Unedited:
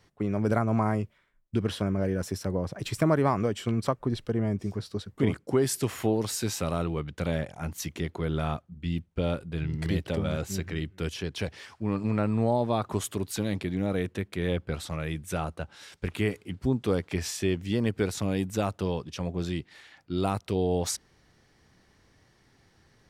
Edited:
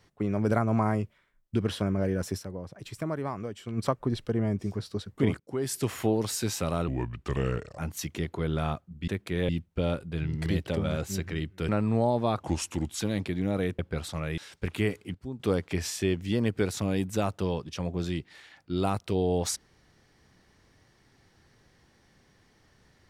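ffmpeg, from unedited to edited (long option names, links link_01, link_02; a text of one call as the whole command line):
ffmpeg -i in.wav -filter_complex "[0:a]asplit=15[link_01][link_02][link_03][link_04][link_05][link_06][link_07][link_08][link_09][link_10][link_11][link_12][link_13][link_14][link_15];[link_01]atrim=end=2.69,asetpts=PTS-STARTPTS,afade=type=out:start_time=2.39:duration=0.3:curve=exp:silence=0.354813[link_16];[link_02]atrim=start=2.69:end=3.49,asetpts=PTS-STARTPTS,volume=-9dB[link_17];[link_03]atrim=start=3.49:end=5.4,asetpts=PTS-STARTPTS,afade=type=in:duration=0.3:curve=exp:silence=0.354813,afade=type=out:start_time=1.906:duration=0.004:curve=hsin:silence=0.1[link_18];[link_04]atrim=start=5.4:end=6.884,asetpts=PTS-STARTPTS,afade=type=in:duration=0.48:silence=0.1[link_19];[link_05]atrim=start=6.88:end=7.59,asetpts=PTS-STARTPTS,asetrate=34839,aresample=44100,atrim=end_sample=39634,asetpts=PTS-STARTPTS[link_20];[link_06]atrim=start=7.586:end=8.892[link_21];[link_07]atrim=start=14.138:end=14.552[link_22];[link_08]atrim=start=8.888:end=11.092[link_23];[link_09]atrim=start=12.148:end=12.864[link_24];[link_10]atrim=start=12.86:end=13.35,asetpts=PTS-STARTPTS,asetrate=36162,aresample=44100,atrim=end_sample=26352,asetpts=PTS-STARTPTS[link_25];[link_11]atrim=start=13.346:end=14.142[link_26];[link_12]atrim=start=14.548:end=15.142[link_27];[link_13]atrim=start=15.778:end=16.552[link_28];[link_14]atrim=start=16.548:end=16.802,asetpts=PTS-STARTPTS,volume=-11.5dB[link_29];[link_15]atrim=start=16.798[link_30];[link_16][link_17][link_18][link_19]concat=n=4:v=0:a=1[link_31];[link_31][link_20]acrossfade=duration=0.004:curve1=hsin:curve2=hsin[link_32];[link_32][link_21]acrossfade=duration=0.004:curve1=hsin:curve2=hsin[link_33];[link_33][link_22]acrossfade=duration=0.004:curve1=hsin:curve2=hsin[link_34];[link_34][link_23]acrossfade=duration=0.004:curve1=hsin:curve2=hsin[link_35];[link_35][link_24]acrossfade=duration=0.004:curve1=hsin:curve2=hsin[link_36];[link_36][link_25]acrossfade=duration=0.004:curve1=hsin:curve2=hsin[link_37];[link_37][link_26]acrossfade=duration=0.004:curve1=hsin:curve2=hsin[link_38];[link_38][link_27]acrossfade=duration=0.004:curve1=hsin:curve2=hsin[link_39];[link_39][link_28]acrossfade=duration=0.004:curve1=hsin:curve2=hsin[link_40];[link_40][link_29]acrossfade=duration=0.004:curve1=hsin:curve2=hsin[link_41];[link_41][link_30]acrossfade=duration=0.004:curve1=hsin:curve2=hsin" out.wav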